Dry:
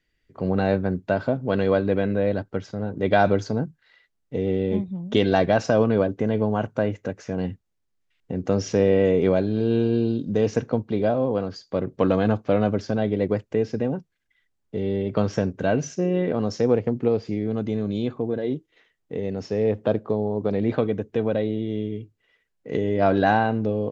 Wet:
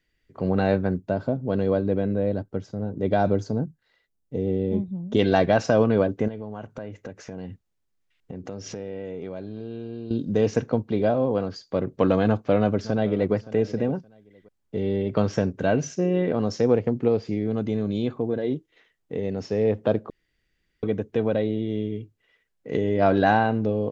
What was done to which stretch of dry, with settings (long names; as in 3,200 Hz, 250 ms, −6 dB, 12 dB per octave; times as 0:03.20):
0:00.98–0:05.19: parametric band 2,200 Hz −10.5 dB 2.7 octaves
0:06.28–0:10.11: downward compressor 4 to 1, threshold −33 dBFS
0:12.27–0:13.34: delay throw 570 ms, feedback 20%, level −16.5 dB
0:20.10–0:20.83: fill with room tone